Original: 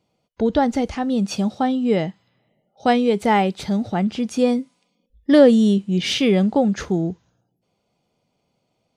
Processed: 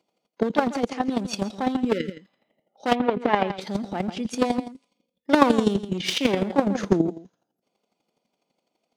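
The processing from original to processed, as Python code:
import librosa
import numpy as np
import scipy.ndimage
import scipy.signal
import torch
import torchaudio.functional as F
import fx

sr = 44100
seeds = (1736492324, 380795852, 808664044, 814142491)

y = np.minimum(x, 2.0 * 10.0 ** (-18.0 / 20.0) - x)
y = scipy.signal.sosfilt(scipy.signal.butter(4, 210.0, 'highpass', fs=sr, output='sos'), y)
y = y + 10.0 ** (-12.5 / 20.0) * np.pad(y, (int(141 * sr / 1000.0), 0))[:len(y)]
y = fx.chopper(y, sr, hz=12.0, depth_pct=65, duty_pct=15)
y = fx.spec_repair(y, sr, seeds[0], start_s=1.95, length_s=0.36, low_hz=560.0, high_hz=1300.0, source='after')
y = fx.lowpass(y, sr, hz=fx.line((2.94, 1800.0), (3.6, 3800.0)), slope=12, at=(2.94, 3.6), fade=0.02)
y = fx.low_shelf(y, sr, hz=410.0, db=9.0, at=(6.68, 7.08))
y = F.gain(torch.from_numpy(y), 3.0).numpy()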